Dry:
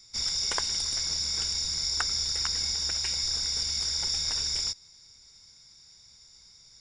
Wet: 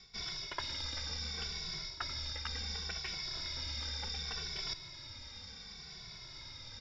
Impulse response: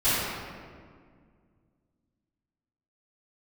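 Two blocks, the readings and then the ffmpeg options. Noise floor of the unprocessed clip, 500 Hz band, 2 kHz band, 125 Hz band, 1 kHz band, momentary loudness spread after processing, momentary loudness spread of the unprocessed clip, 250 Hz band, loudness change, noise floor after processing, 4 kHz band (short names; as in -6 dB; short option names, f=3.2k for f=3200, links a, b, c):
-55 dBFS, -3.5 dB, -4.0 dB, -1.5 dB, -5.0 dB, 9 LU, 1 LU, -2.0 dB, -13.0 dB, -51 dBFS, -11.0 dB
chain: -filter_complex "[0:a]lowpass=f=3.9k:w=0.5412,lowpass=f=3.9k:w=1.3066,areverse,acompressor=threshold=-53dB:ratio=6,areverse,asplit=2[a][b];[b]adelay=2.2,afreqshift=-0.69[c];[a][c]amix=inputs=2:normalize=1,volume=17dB"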